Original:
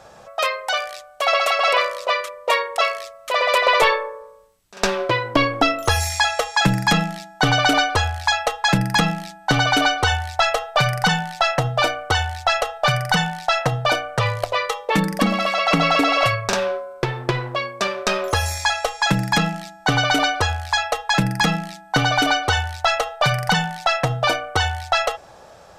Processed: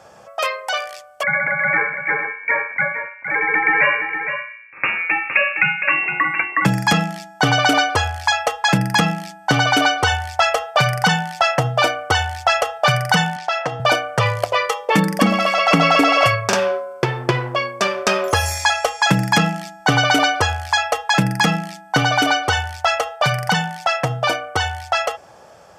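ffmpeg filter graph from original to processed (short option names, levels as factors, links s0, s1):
-filter_complex "[0:a]asettb=1/sr,asplit=3[s0][s1][s2];[s0]atrim=end=1.234[s3];[s1]atrim=start=1.23:end=6.65,asetpts=PTS-STARTPTS,afade=t=in:d=0.004:c=qsin,afade=t=out:st=5.416:d=0.004:c=qsin,lowpass=f=2400:t=q:w=0.5098,lowpass=f=2400:t=q:w=0.6013,lowpass=f=2400:t=q:w=0.9,lowpass=f=2400:t=q:w=2.563,afreqshift=-2800,aecho=1:1:463:0.376,atrim=end_sample=239022[s4];[s2]atrim=start=6.646[s5];[s3][s4]acrossfade=d=0.004:c1=hsin:c2=qsin[s6];[s6][s5]acrossfade=d=0.004:c1=qsin:c2=hsin,asettb=1/sr,asplit=3[s7][s8][s9];[s7]atrim=end=13.364[s10];[s8]atrim=start=13.36:end=13.8,asetpts=PTS-STARTPTS,afade=t=in:d=0.004:c=qsin,afade=t=out:st=0.436:d=0.004:c=qsin,highpass=210,lowpass=6000,acompressor=threshold=0.0447:ratio=1.5:attack=3.2:release=140:knee=1:detection=peak[s11];[s9]atrim=start=13.796[s12];[s10][s11]acrossfade=d=0.004:c1=hsin:c2=qsin[s13];[s13][s12]acrossfade=d=0.004:c1=qsin:c2=hsin,bandreject=f=3900:w=6.8,dynaudnorm=f=800:g=13:m=3.76,highpass=83"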